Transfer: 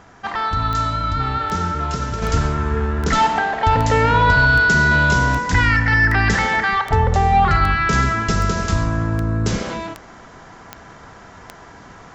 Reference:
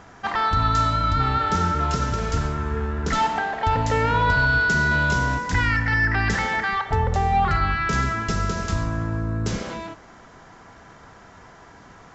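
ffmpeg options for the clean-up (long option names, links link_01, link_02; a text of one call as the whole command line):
ffmpeg -i in.wav -af "adeclick=threshold=4,asetnsamples=nb_out_samples=441:pad=0,asendcmd='2.22 volume volume -5.5dB',volume=0dB" out.wav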